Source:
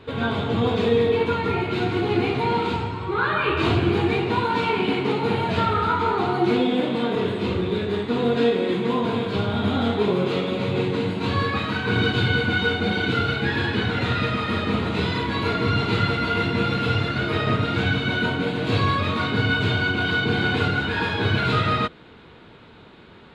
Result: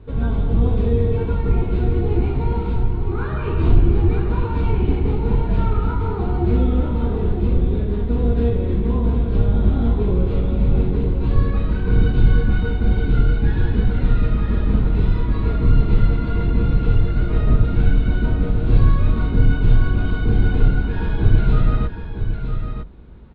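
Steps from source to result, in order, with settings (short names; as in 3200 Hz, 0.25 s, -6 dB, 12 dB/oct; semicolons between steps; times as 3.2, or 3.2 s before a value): octaver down 2 oct, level 0 dB; tilt -4 dB/oct; on a send: echo 0.957 s -8 dB; on the sum: gain -9 dB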